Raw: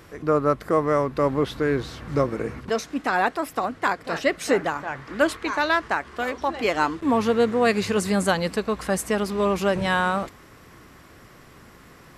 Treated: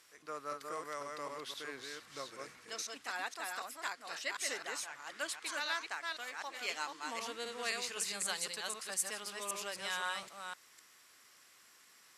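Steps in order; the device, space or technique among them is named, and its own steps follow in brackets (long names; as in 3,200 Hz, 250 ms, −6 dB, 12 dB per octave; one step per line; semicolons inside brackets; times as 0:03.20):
delay that plays each chunk backwards 257 ms, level −3 dB
piezo pickup straight into a mixer (low-pass filter 9,000 Hz 12 dB per octave; first difference)
level −2.5 dB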